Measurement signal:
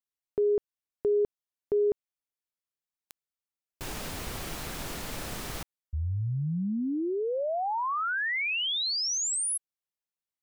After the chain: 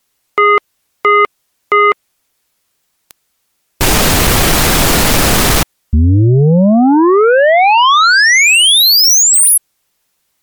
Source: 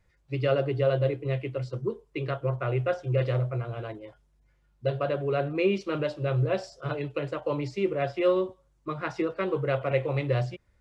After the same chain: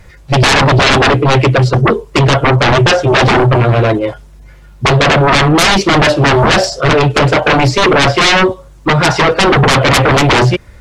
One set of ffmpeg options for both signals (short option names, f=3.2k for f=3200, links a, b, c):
-af "aeval=exprs='0.266*sin(PI/2*8.91*val(0)/0.266)':c=same,volume=6.5dB" -ar 48000 -c:a libmp3lame -b:a 80k